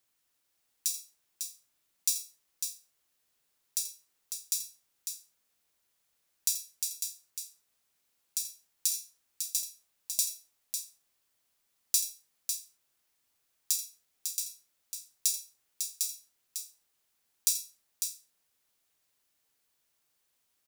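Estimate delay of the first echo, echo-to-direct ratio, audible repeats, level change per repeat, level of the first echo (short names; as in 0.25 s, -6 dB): 83 ms, -5.5 dB, 2, no steady repeat, -13.0 dB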